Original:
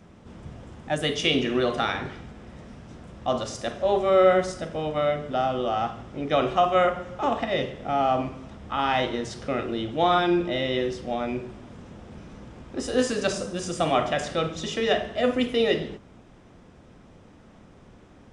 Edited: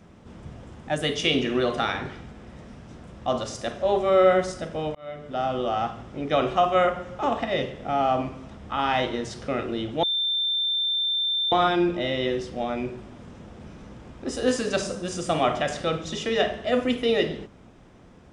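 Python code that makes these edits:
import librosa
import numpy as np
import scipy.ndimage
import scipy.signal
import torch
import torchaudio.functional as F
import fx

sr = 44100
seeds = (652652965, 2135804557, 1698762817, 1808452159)

y = fx.edit(x, sr, fx.fade_in_span(start_s=4.95, length_s=0.59),
    fx.insert_tone(at_s=10.03, length_s=1.49, hz=3570.0, db=-22.0), tone=tone)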